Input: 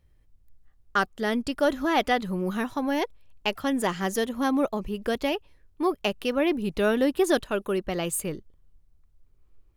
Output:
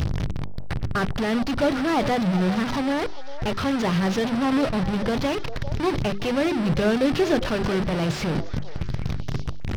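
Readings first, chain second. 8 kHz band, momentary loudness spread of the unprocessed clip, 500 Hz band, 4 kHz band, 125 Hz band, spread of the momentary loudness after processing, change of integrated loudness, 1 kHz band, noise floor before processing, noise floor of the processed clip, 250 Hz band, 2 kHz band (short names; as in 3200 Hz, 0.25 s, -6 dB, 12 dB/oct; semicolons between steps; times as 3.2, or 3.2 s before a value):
-3.5 dB, 7 LU, +1.5 dB, +2.5 dB, +13.5 dB, 10 LU, +2.5 dB, +1.5 dB, -62 dBFS, -27 dBFS, +4.5 dB, +1.5 dB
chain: delta modulation 32 kbps, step -21 dBFS; bell 130 Hz +11.5 dB 1.4 oct; notches 50/100/150/200/250/300/350/400 Hz; delay with a stepping band-pass 0.399 s, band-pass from 630 Hz, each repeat 1.4 oct, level -10.5 dB; slew limiter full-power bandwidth 120 Hz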